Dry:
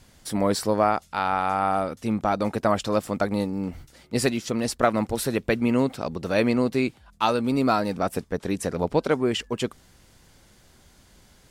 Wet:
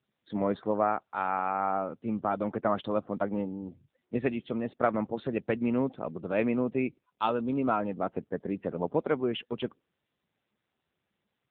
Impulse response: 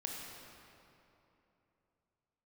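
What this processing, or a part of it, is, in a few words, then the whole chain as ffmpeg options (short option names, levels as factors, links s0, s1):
mobile call with aggressive noise cancelling: -af "highpass=130,afftdn=nr=28:nf=-40,volume=0.562" -ar 8000 -c:a libopencore_amrnb -b:a 7950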